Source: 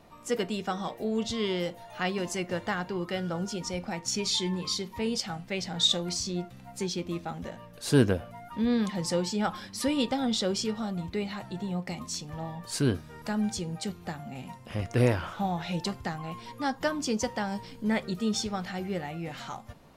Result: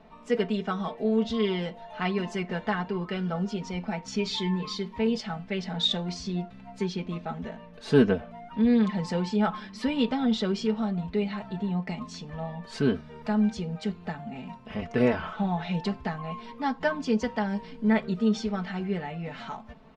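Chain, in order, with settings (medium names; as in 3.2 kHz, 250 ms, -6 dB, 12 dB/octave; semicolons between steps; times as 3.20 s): low-pass 3.1 kHz 12 dB/octave; comb 4.6 ms, depth 80%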